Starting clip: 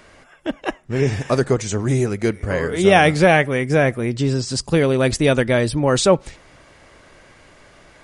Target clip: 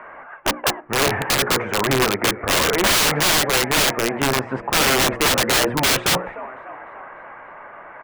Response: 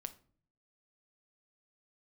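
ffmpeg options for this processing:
-filter_complex "[0:a]firequalizer=gain_entry='entry(290,0);entry(910,15);entry(2600,4);entry(4200,-17)':delay=0.05:min_phase=1,apsyclip=7dB,acrossover=split=160 2400:gain=0.251 1 0.0794[link_01][link_02][link_03];[link_01][link_02][link_03]amix=inputs=3:normalize=0,bandreject=frequency=60:width_type=h:width=6,bandreject=frequency=120:width_type=h:width=6,bandreject=frequency=180:width_type=h:width=6,bandreject=frequency=240:width_type=h:width=6,bandreject=frequency=300:width_type=h:width=6,bandreject=frequency=360:width_type=h:width=6,bandreject=frequency=420:width_type=h:width=6,bandreject=frequency=480:width_type=h:width=6,bandreject=frequency=540:width_type=h:width=6,asplit=2[link_04][link_05];[link_05]asplit=5[link_06][link_07][link_08][link_09][link_10];[link_06]adelay=296,afreqshift=66,volume=-22dB[link_11];[link_07]adelay=592,afreqshift=132,volume=-26.4dB[link_12];[link_08]adelay=888,afreqshift=198,volume=-30.9dB[link_13];[link_09]adelay=1184,afreqshift=264,volume=-35.3dB[link_14];[link_10]adelay=1480,afreqshift=330,volume=-39.7dB[link_15];[link_11][link_12][link_13][link_14][link_15]amix=inputs=5:normalize=0[link_16];[link_04][link_16]amix=inputs=2:normalize=0,aeval=exprs='(mod(2*val(0)+1,2)-1)/2':channel_layout=same,volume=-5.5dB"

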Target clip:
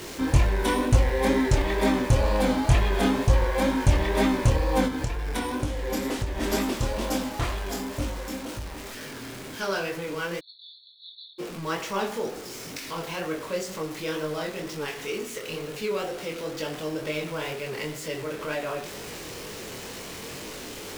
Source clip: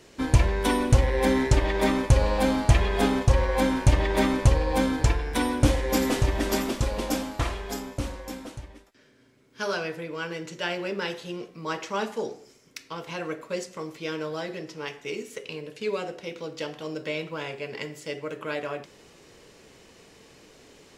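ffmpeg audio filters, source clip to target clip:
ffmpeg -i in.wav -filter_complex "[0:a]aeval=exprs='val(0)+0.5*0.0224*sgn(val(0))':channel_layout=same,asplit=2[link_01][link_02];[link_02]acrusher=bits=6:mix=0:aa=0.000001,volume=-3dB[link_03];[link_01][link_03]amix=inputs=2:normalize=0,flanger=delay=19:depth=7.4:speed=2.1,asplit=3[link_04][link_05][link_06];[link_04]afade=type=out:start_time=4.87:duration=0.02[link_07];[link_05]acompressor=threshold=-22dB:ratio=6,afade=type=in:start_time=4.87:duration=0.02,afade=type=out:start_time=6.41:duration=0.02[link_08];[link_06]afade=type=in:start_time=6.41:duration=0.02[link_09];[link_07][link_08][link_09]amix=inputs=3:normalize=0,asplit=3[link_10][link_11][link_12];[link_10]afade=type=out:start_time=10.39:duration=0.02[link_13];[link_11]asuperpass=centerf=3900:order=20:qfactor=3.7,afade=type=in:start_time=10.39:duration=0.02,afade=type=out:start_time=11.38:duration=0.02[link_14];[link_12]afade=type=in:start_time=11.38:duration=0.02[link_15];[link_13][link_14][link_15]amix=inputs=3:normalize=0,volume=-3dB" out.wav

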